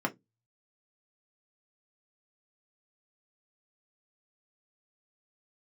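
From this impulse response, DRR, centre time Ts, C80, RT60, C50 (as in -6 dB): 1.0 dB, 6 ms, 35.0 dB, 0.15 s, 21.5 dB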